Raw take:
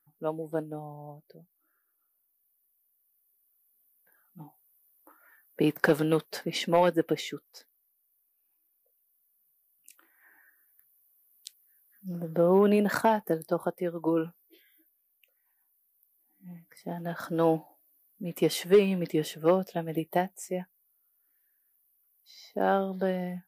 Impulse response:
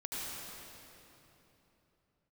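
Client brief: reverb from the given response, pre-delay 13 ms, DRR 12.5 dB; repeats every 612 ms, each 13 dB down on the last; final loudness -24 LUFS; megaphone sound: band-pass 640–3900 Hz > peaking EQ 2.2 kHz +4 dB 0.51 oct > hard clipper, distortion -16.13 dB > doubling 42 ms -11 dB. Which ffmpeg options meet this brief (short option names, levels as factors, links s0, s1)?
-filter_complex "[0:a]aecho=1:1:612|1224|1836:0.224|0.0493|0.0108,asplit=2[s0][s1];[1:a]atrim=start_sample=2205,adelay=13[s2];[s1][s2]afir=irnorm=-1:irlink=0,volume=0.178[s3];[s0][s3]amix=inputs=2:normalize=0,highpass=640,lowpass=3900,equalizer=f=2200:t=o:w=0.51:g=4,asoftclip=type=hard:threshold=0.0944,asplit=2[s4][s5];[s5]adelay=42,volume=0.282[s6];[s4][s6]amix=inputs=2:normalize=0,volume=3.16"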